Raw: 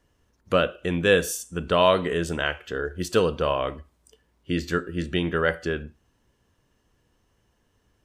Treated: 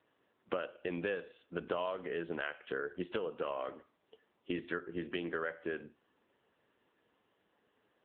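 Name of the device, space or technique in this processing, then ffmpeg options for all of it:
voicemail: -af "highpass=300,lowpass=2.9k,acompressor=threshold=-34dB:ratio=8,volume=1dB" -ar 8000 -c:a libopencore_amrnb -b:a 6700

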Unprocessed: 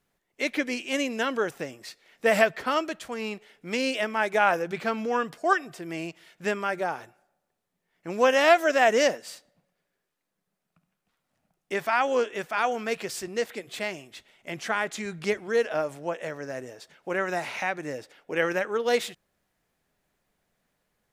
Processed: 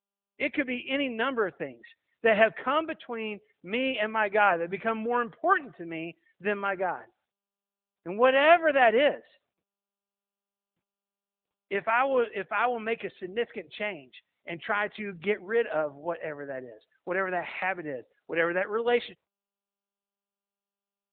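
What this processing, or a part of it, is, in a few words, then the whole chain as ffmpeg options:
mobile call with aggressive noise cancelling: -af "highpass=f=160:p=1,afftdn=nr=31:nf=-45" -ar 8000 -c:a libopencore_amrnb -b:a 10200

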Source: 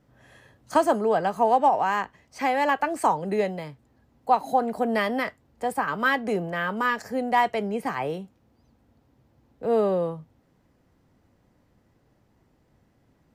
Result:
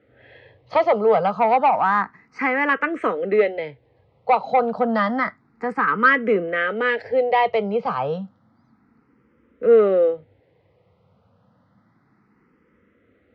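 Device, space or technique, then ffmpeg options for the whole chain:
barber-pole phaser into a guitar amplifier: -filter_complex "[0:a]asplit=2[a][b];[b]afreqshift=0.3[c];[a][c]amix=inputs=2:normalize=1,asoftclip=type=tanh:threshold=-16dB,highpass=89,equalizer=f=97:t=q:w=4:g=5,equalizer=f=200:t=q:w=4:g=4,equalizer=f=480:t=q:w=4:g=9,equalizer=f=1.3k:t=q:w=4:g=9,equalizer=f=2.1k:t=q:w=4:g=7,lowpass=f=4.2k:w=0.5412,lowpass=f=4.2k:w=1.3066,volume=4.5dB"

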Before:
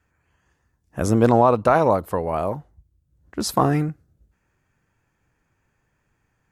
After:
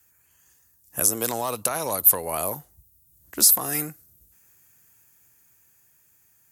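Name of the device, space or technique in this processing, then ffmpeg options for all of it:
FM broadcast chain: -filter_complex "[0:a]highpass=57,dynaudnorm=f=250:g=13:m=11.5dB,acrossover=split=320|1800[a][b][c];[a]acompressor=threshold=-34dB:ratio=4[d];[b]acompressor=threshold=-22dB:ratio=4[e];[c]acompressor=threshold=-33dB:ratio=4[f];[d][e][f]amix=inputs=3:normalize=0,aemphasis=mode=production:type=75fm,alimiter=limit=-11.5dB:level=0:latency=1:release=283,asoftclip=type=hard:threshold=-14.5dB,lowpass=f=15k:w=0.5412,lowpass=f=15k:w=1.3066,aemphasis=mode=production:type=75fm,volume=-3.5dB"

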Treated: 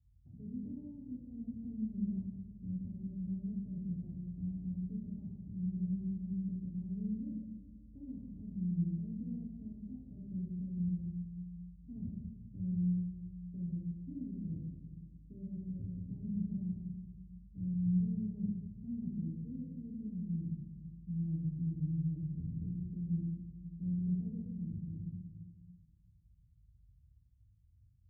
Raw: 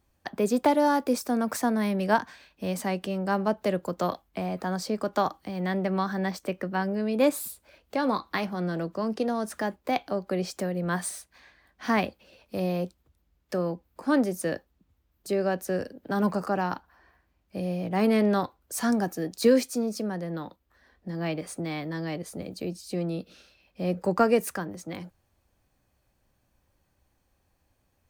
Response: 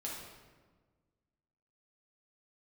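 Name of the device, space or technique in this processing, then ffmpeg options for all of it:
club heard from the street: -filter_complex "[0:a]alimiter=limit=-19.5dB:level=0:latency=1,lowpass=f=130:w=0.5412,lowpass=f=130:w=1.3066[a];[1:a]atrim=start_sample=2205[b];[a][b]afir=irnorm=-1:irlink=0,highpass=46,volume=8dB"

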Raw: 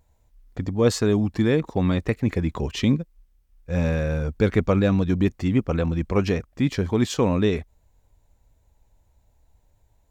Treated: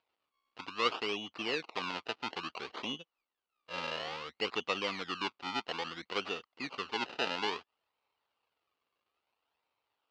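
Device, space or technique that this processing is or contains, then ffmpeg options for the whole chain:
circuit-bent sampling toy: -af "acrusher=samples=27:mix=1:aa=0.000001:lfo=1:lforange=27:lforate=0.59,highpass=560,equalizer=f=600:t=q:w=4:g=-6,equalizer=f=1.2k:t=q:w=4:g=5,equalizer=f=1.7k:t=q:w=4:g=-4,equalizer=f=2.8k:t=q:w=4:g=8,equalizer=f=4.4k:t=q:w=4:g=4,lowpass=f=4.8k:w=0.5412,lowpass=f=4.8k:w=1.3066,volume=-8.5dB"

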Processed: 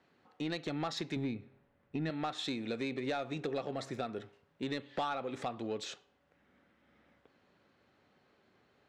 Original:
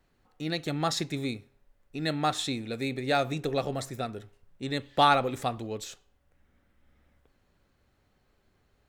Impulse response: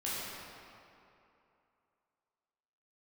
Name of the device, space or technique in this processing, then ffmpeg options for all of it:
AM radio: -filter_complex "[0:a]asettb=1/sr,asplit=3[a][b][c];[a]atrim=end=1.164[d];[b]atrim=start=1.16:end=2.1,asetpts=PTS-STARTPTS,afade=t=in:d=0.004:c=qsin,afade=t=out:st=0.936:d=0.004:c=qsin,bass=f=250:g=10,treble=f=4k:g=-12[e];[c]atrim=start=2.096[f];[d][e]acrossfade=d=0.004:c1=hsin:c2=qsin[g];[g][f]acrossfade=d=0.004:c1=qsin:c2=hsin,highpass=180,lowpass=4.4k,acompressor=threshold=-36dB:ratio=5,asoftclip=type=tanh:threshold=-29.5dB,volume=3.5dB"

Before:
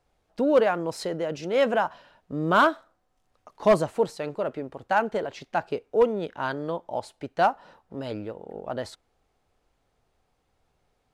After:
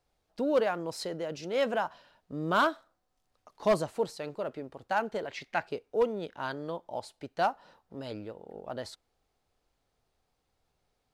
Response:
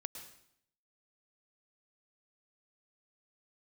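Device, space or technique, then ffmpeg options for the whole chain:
presence and air boost: -filter_complex "[0:a]asettb=1/sr,asplit=3[a][b][c];[a]atrim=end=5.274[d];[b]atrim=start=5.27:end=5.68,asetpts=PTS-STARTPTS,afade=t=in:d=0.004:c=qsin,afade=t=out:st=0.406:d=0.004:c=qsin,equalizer=f=2.1k:t=o:w=0.77:g=12.5[e];[c]atrim=start=5.676[f];[d][e]acrossfade=d=0.004:c1=hsin:c2=qsin[g];[g][f]acrossfade=d=0.004:c1=qsin:c2=hsin,equalizer=f=4.5k:t=o:w=0.87:g=4.5,highshelf=f=9.1k:g=6.5,volume=-6.5dB"

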